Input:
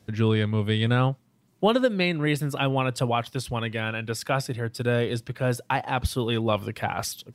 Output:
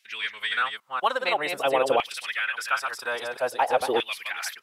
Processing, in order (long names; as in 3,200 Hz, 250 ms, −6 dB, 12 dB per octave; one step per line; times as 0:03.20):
delay that plays each chunk backwards 317 ms, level −5 dB
phase-vocoder stretch with locked phases 0.63×
auto-filter high-pass saw down 0.5 Hz 440–2,500 Hz